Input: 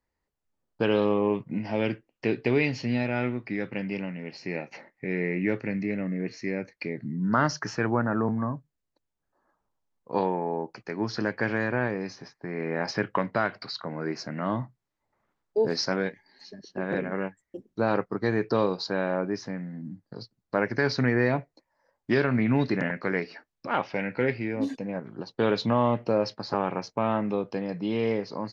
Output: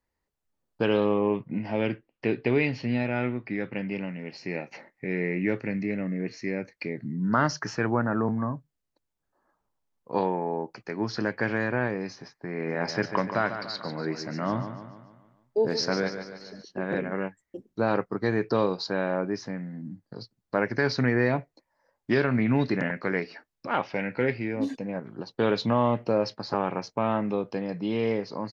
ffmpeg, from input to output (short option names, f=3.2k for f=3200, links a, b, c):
-filter_complex "[0:a]asettb=1/sr,asplit=3[a][b][c];[a]atrim=end=0.974[d];[b]atrim=start=0.97:end=4.01,asetpts=PTS-STARTPTS,afade=t=in:d=0.004:c=qsin,afade=t=out:st=3.036:d=0.004:c=qsin,lowpass=4k[e];[c]atrim=start=4.006[f];[d][e]acrossfade=d=0.004:c1=hsin:c2=qsin[g];[g][f]acrossfade=d=0.004:c1=qsin:c2=hsin,asplit=3[h][i][j];[h]afade=t=out:st=12.67:d=0.02[k];[i]aecho=1:1:145|290|435|580|725|870:0.335|0.171|0.0871|0.0444|0.0227|0.0116,afade=t=in:st=12.67:d=0.02,afade=t=out:st=16.62:d=0.02[l];[j]afade=t=in:st=16.62:d=0.02[m];[k][l][m]amix=inputs=3:normalize=0"